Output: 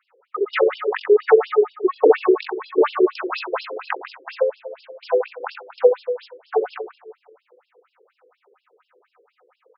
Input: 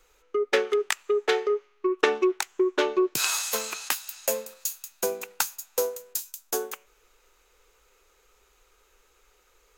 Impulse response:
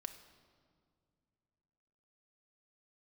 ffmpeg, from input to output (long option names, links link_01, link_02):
-filter_complex "[0:a]firequalizer=gain_entry='entry(330,0);entry(500,5);entry(3800,-14);entry(11000,10)':delay=0.05:min_phase=1,asplit=2[link_01][link_02];[link_02]aeval=exprs='val(0)*gte(abs(val(0)),0.0316)':channel_layout=same,volume=-6dB[link_03];[link_01][link_03]amix=inputs=2:normalize=0,flanger=delay=22.5:depth=2.2:speed=2.3,aecho=1:1:40|88|145.6|214.7|297.7:0.631|0.398|0.251|0.158|0.1,asplit=2[link_04][link_05];[1:a]atrim=start_sample=2205[link_06];[link_05][link_06]afir=irnorm=-1:irlink=0,volume=7dB[link_07];[link_04][link_07]amix=inputs=2:normalize=0,afftfilt=real='re*between(b*sr/1024,370*pow(3900/370,0.5+0.5*sin(2*PI*4.2*pts/sr))/1.41,370*pow(3900/370,0.5+0.5*sin(2*PI*4.2*pts/sr))*1.41)':imag='im*between(b*sr/1024,370*pow(3900/370,0.5+0.5*sin(2*PI*4.2*pts/sr))/1.41,370*pow(3900/370,0.5+0.5*sin(2*PI*4.2*pts/sr))*1.41)':win_size=1024:overlap=0.75,volume=2.5dB"